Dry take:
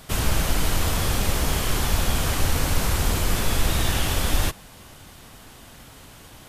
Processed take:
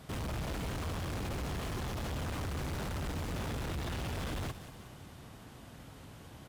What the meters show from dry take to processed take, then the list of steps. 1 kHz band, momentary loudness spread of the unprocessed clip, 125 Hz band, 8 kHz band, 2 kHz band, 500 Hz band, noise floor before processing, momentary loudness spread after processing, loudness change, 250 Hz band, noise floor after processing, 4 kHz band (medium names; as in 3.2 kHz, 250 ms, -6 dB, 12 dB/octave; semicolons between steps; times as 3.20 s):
-13.0 dB, 1 LU, -11.5 dB, -21.0 dB, -14.5 dB, -11.0 dB, -46 dBFS, 14 LU, -14.0 dB, -10.0 dB, -52 dBFS, -17.5 dB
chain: high-pass 83 Hz 12 dB/octave; tilt EQ -2 dB/octave; hard clipper -28.5 dBFS, distortion -5 dB; feedback delay 185 ms, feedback 54%, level -14 dB; slew-rate limiter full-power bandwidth 82 Hz; trim -7 dB